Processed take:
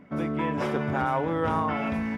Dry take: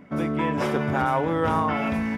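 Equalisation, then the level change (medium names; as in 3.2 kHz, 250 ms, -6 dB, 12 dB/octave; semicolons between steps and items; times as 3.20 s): treble shelf 6.2 kHz -7 dB; -3.0 dB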